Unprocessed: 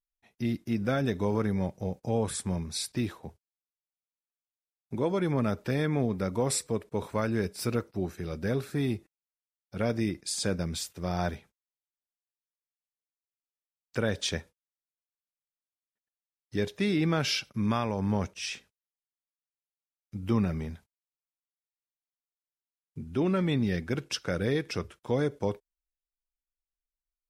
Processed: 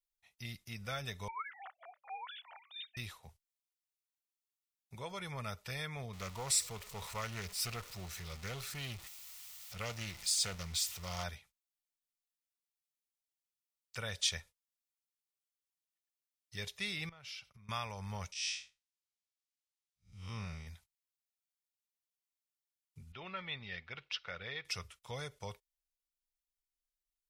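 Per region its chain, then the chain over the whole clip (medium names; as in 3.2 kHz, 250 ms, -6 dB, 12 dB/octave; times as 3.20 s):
1.28–2.97 s: formants replaced by sine waves + dynamic bell 1.5 kHz, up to +5 dB, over -47 dBFS, Q 1.4 + Chebyshev high-pass 710 Hz, order 4
6.13–11.24 s: jump at every zero crossing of -39 dBFS + peaking EQ 10 kHz -4.5 dB 0.25 oct + loudspeaker Doppler distortion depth 0.29 ms
17.09–17.69 s: treble shelf 3.4 kHz -12 dB + compression, threshold -42 dBFS
18.32–20.67 s: spectral blur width 139 ms + low-pass 5.8 kHz + treble shelf 4.6 kHz +10.5 dB
23.12–24.65 s: low-pass 3.7 kHz 24 dB/octave + bass shelf 250 Hz -11 dB
whole clip: amplifier tone stack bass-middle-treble 10-0-10; band-stop 1.6 kHz, Q 7.8; trim +1 dB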